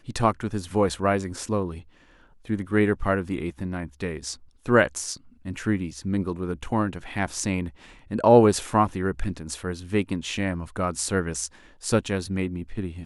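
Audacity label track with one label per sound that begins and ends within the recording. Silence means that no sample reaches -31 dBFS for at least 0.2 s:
2.490000	4.340000	sound
4.660000	5.150000	sound
5.460000	7.690000	sound
8.110000	11.470000	sound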